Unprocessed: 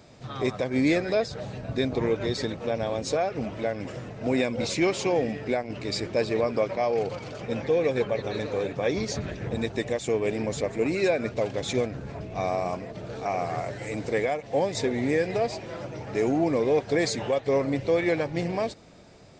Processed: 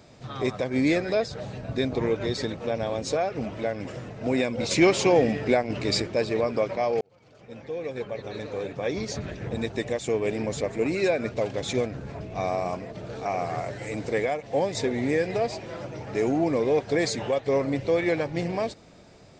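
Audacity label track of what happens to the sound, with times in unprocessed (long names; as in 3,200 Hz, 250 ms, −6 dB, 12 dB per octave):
4.710000	6.020000	clip gain +5 dB
7.010000	10.450000	fade in equal-power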